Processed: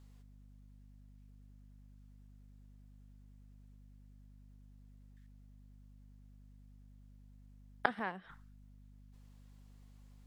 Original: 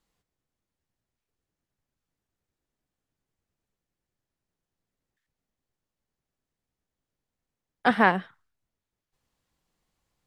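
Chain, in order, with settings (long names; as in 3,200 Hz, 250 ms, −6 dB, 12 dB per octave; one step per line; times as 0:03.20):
mains hum 50 Hz, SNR 28 dB
gate with flip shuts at −18 dBFS, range −25 dB
level +5.5 dB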